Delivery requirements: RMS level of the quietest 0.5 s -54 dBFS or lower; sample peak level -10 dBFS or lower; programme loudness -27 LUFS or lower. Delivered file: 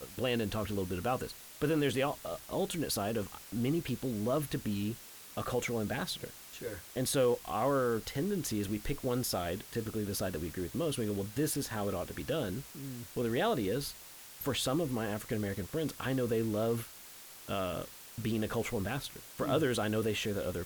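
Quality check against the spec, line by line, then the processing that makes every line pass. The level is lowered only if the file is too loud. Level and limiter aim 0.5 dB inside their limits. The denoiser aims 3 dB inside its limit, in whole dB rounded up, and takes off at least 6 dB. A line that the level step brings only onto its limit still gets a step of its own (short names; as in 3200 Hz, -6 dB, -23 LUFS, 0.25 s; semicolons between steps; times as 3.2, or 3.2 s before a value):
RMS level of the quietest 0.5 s -51 dBFS: fail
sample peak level -19.5 dBFS: OK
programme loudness -34.5 LUFS: OK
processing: denoiser 6 dB, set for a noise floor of -51 dBFS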